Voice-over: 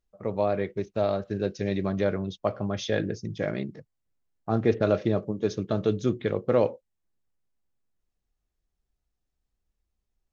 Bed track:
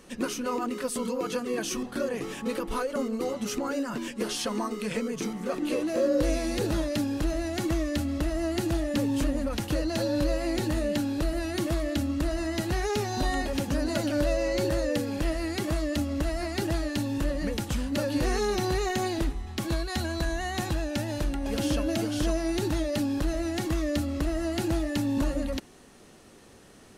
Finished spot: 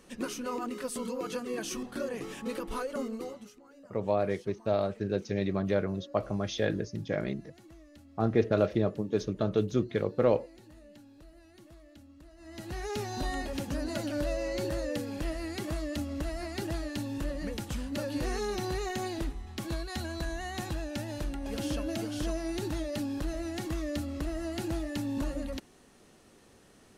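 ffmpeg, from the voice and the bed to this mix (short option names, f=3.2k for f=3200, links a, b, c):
-filter_complex "[0:a]adelay=3700,volume=-2.5dB[a];[1:a]volume=15dB,afade=t=out:st=3.05:d=0.48:silence=0.0891251,afade=t=in:st=12.37:d=0.63:silence=0.1[b];[a][b]amix=inputs=2:normalize=0"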